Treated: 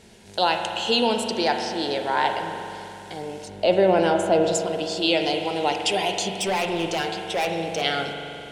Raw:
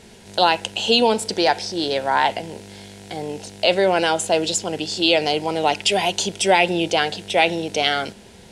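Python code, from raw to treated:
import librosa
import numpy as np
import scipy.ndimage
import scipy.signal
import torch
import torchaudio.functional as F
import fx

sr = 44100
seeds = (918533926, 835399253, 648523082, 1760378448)

y = fx.tilt_shelf(x, sr, db=7.0, hz=1200.0, at=(3.48, 4.55))
y = fx.overload_stage(y, sr, gain_db=16.0, at=(6.38, 7.82))
y = fx.rev_spring(y, sr, rt60_s=2.9, pass_ms=(42,), chirp_ms=45, drr_db=4.0)
y = F.gain(torch.from_numpy(y), -5.0).numpy()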